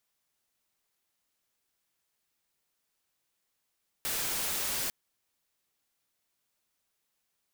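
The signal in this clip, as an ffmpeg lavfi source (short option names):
-f lavfi -i "anoisesrc=c=white:a=0.0411:d=0.85:r=44100:seed=1"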